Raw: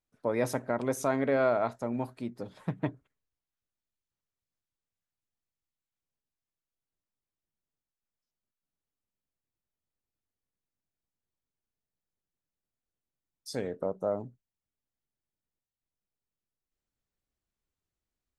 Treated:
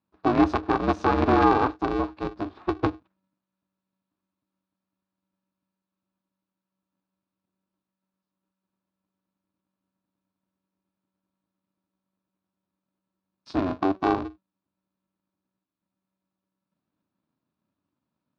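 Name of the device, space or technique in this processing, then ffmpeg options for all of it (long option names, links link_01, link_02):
ring modulator pedal into a guitar cabinet: -af "aeval=exprs='val(0)*sgn(sin(2*PI*190*n/s))':channel_layout=same,highpass=76,equalizer=frequency=91:width_type=q:width=4:gain=5,equalizer=frequency=300:width_type=q:width=4:gain=10,equalizer=frequency=500:width_type=q:width=4:gain=-5,equalizer=frequency=1100:width_type=q:width=4:gain=5,equalizer=frequency=2000:width_type=q:width=4:gain=-9,equalizer=frequency=3100:width_type=q:width=4:gain=-7,lowpass=frequency=3800:width=0.5412,lowpass=frequency=3800:width=1.3066,volume=6dB"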